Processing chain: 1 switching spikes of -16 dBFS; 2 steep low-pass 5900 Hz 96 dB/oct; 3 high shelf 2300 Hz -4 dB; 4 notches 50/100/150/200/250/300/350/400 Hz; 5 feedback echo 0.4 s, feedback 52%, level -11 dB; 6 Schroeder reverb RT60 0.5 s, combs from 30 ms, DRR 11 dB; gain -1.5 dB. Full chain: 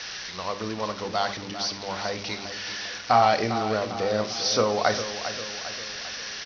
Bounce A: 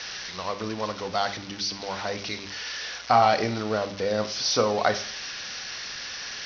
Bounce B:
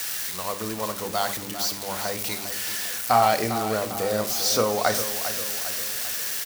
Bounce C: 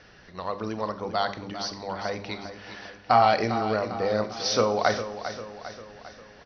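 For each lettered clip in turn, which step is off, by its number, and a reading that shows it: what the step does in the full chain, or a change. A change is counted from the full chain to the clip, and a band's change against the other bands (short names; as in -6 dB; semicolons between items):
5, echo-to-direct -7.0 dB to -11.0 dB; 2, momentary loudness spread change -3 LU; 1, distortion -1 dB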